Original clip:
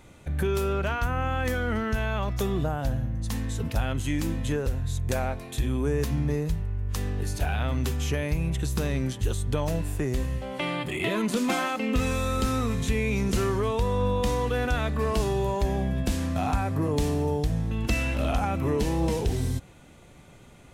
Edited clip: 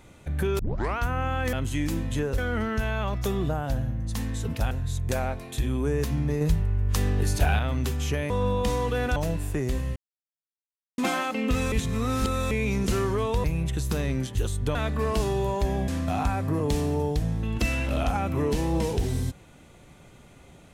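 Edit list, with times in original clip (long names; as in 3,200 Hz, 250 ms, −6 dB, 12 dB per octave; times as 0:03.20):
0:00.59: tape start 0.39 s
0:03.86–0:04.71: move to 0:01.53
0:06.41–0:07.59: clip gain +5 dB
0:08.30–0:09.61: swap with 0:13.89–0:14.75
0:10.41–0:11.43: silence
0:12.17–0:12.96: reverse
0:15.88–0:16.16: remove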